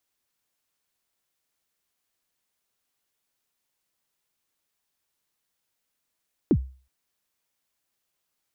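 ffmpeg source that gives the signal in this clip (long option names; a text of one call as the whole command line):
ffmpeg -f lavfi -i "aevalsrc='0.237*pow(10,-3*t/0.38)*sin(2*PI*(390*0.064/log(65/390)*(exp(log(65/390)*min(t,0.064)/0.064)-1)+65*max(t-0.064,0)))':duration=0.37:sample_rate=44100" out.wav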